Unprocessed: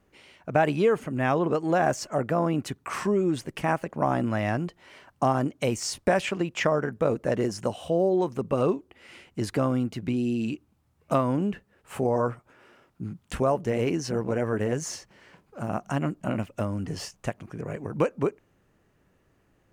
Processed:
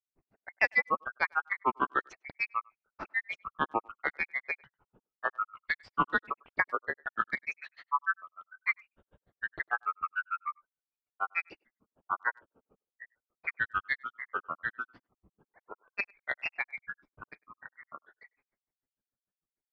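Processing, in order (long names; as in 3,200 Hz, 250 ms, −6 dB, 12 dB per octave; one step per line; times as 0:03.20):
frequency inversion band by band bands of 2,000 Hz
noise gate −58 dBFS, range −12 dB
low-pass filter 3,900 Hz 24 dB per octave
low-pass that shuts in the quiet parts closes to 470 Hz, open at −19.5 dBFS
dynamic equaliser 470 Hz, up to +4 dB, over −42 dBFS, Q 0.96
granular cloud 78 ms, grains 6.7 per second, pitch spread up and down by 7 semitones
far-end echo of a speakerphone 100 ms, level −28 dB
level −2.5 dB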